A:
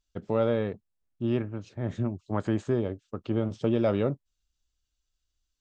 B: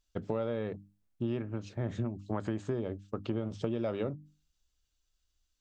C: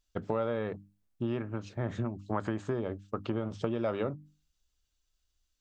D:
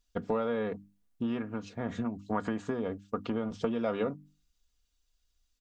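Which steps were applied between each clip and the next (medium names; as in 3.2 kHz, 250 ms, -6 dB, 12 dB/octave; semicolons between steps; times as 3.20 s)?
hum notches 50/100/150/200/250/300 Hz; compression, threshold -32 dBFS, peak gain reduction 11.5 dB; trim +2 dB
dynamic bell 1.2 kHz, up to +7 dB, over -52 dBFS, Q 0.85
comb 4.2 ms, depth 60%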